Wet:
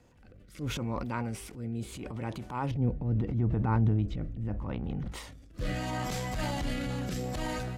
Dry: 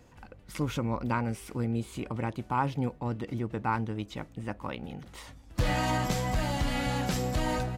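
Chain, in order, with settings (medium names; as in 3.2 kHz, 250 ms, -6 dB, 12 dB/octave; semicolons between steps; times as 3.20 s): 2.71–5.12 s: RIAA curve playback; transient shaper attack -8 dB, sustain +8 dB; rotary cabinet horn 0.75 Hz; trim -2 dB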